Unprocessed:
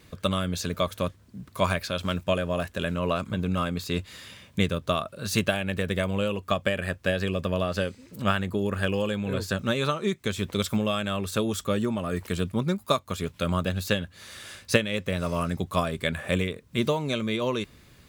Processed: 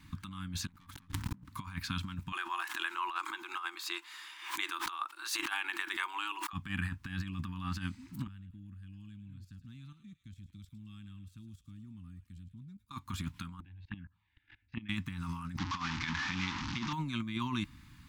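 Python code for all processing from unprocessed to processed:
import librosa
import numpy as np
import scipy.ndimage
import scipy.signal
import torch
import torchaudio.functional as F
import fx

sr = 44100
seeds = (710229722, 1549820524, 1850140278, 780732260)

y = fx.chain(x, sr, fx.leveller(passes=5),
    fx.pre_swell(db_per_s=53.0), at=(0.68, 1.44))
y = fx.chain(y, sr, fx.brickwall_highpass(low_hz=320.0),
    fx.peak_eq(hz=780.0, db=3.5, octaves=2.1),
    fx.pre_swell(db_per_s=100.0), at=(2.32, 6.53))
y = fx.chain(y, sr, fx.tone_stack(knobs='10-0-1'),
    fx.level_steps(step_db=12),
    fx.echo_wet_highpass(ms=107, feedback_pct=51, hz=1700.0, wet_db=-11), at=(8.27, 12.91))
y = fx.chain(y, sr, fx.lowpass(hz=2500.0, slope=24),
    fx.level_steps(step_db=23),
    fx.env_phaser(low_hz=170.0, high_hz=1600.0, full_db=-24.0), at=(13.6, 14.89))
y = fx.chain(y, sr, fx.delta_mod(bps=32000, step_db=-24.5),
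    fx.low_shelf(hz=210.0, db=-11.0), at=(15.58, 16.93))
y = scipy.signal.sosfilt(scipy.signal.ellip(3, 1.0, 40, [300.0, 890.0], 'bandstop', fs=sr, output='sos'), y)
y = fx.high_shelf(y, sr, hz=2700.0, db=-8.0)
y = fx.over_compress(y, sr, threshold_db=-33.0, ratio=-0.5)
y = F.gain(torch.from_numpy(y), -4.0).numpy()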